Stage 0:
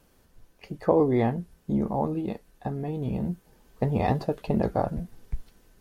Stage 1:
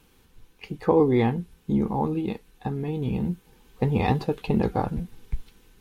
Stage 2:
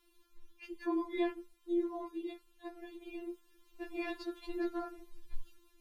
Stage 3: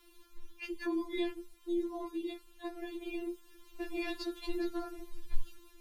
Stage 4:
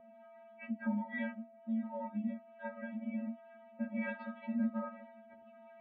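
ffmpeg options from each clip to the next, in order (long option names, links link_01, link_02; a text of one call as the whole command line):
ffmpeg -i in.wav -af "superequalizer=8b=0.316:12b=1.78:13b=1.78,volume=2.5dB" out.wav
ffmpeg -i in.wav -af "afftfilt=real='re*4*eq(mod(b,16),0)':imag='im*4*eq(mod(b,16),0)':win_size=2048:overlap=0.75,volume=-7dB" out.wav
ffmpeg -i in.wav -filter_complex "[0:a]acrossover=split=240|3000[link_01][link_02][link_03];[link_02]acompressor=threshold=-48dB:ratio=6[link_04];[link_01][link_04][link_03]amix=inputs=3:normalize=0,volume=8.5dB" out.wav
ffmpeg -i in.wav -filter_complex "[0:a]highpass=frequency=360:width_type=q:width=0.5412,highpass=frequency=360:width_type=q:width=1.307,lowpass=frequency=2300:width_type=q:width=0.5176,lowpass=frequency=2300:width_type=q:width=0.7071,lowpass=frequency=2300:width_type=q:width=1.932,afreqshift=-120,aeval=exprs='val(0)+0.00126*sin(2*PI*670*n/s)':channel_layout=same,acrossover=split=590[link_01][link_02];[link_01]aeval=exprs='val(0)*(1-0.7/2+0.7/2*cos(2*PI*1.3*n/s))':channel_layout=same[link_03];[link_02]aeval=exprs='val(0)*(1-0.7/2-0.7/2*cos(2*PI*1.3*n/s))':channel_layout=same[link_04];[link_03][link_04]amix=inputs=2:normalize=0,volume=6.5dB" out.wav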